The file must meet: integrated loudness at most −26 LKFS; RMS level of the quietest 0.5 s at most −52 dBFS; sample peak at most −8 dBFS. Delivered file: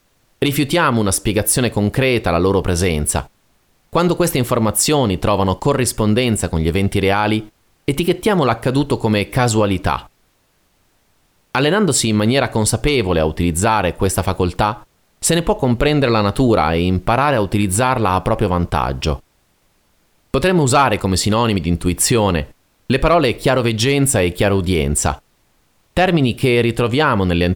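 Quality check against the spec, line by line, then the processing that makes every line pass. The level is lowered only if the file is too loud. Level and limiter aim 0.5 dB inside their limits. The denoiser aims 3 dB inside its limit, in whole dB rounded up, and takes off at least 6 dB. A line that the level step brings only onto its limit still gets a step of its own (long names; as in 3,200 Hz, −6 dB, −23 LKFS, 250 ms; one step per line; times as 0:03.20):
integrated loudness −16.5 LKFS: out of spec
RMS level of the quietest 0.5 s −60 dBFS: in spec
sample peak −4.0 dBFS: out of spec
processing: level −10 dB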